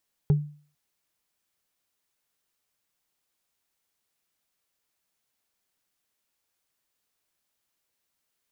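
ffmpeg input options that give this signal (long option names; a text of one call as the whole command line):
ffmpeg -f lavfi -i "aevalsrc='0.2*pow(10,-3*t/0.43)*sin(2*PI*148*t)+0.0531*pow(10,-3*t/0.127)*sin(2*PI*408*t)+0.0141*pow(10,-3*t/0.057)*sin(2*PI*799.8*t)+0.00376*pow(10,-3*t/0.031)*sin(2*PI*1322.1*t)+0.001*pow(10,-3*t/0.019)*sin(2*PI*1974.3*t)':duration=0.45:sample_rate=44100" out.wav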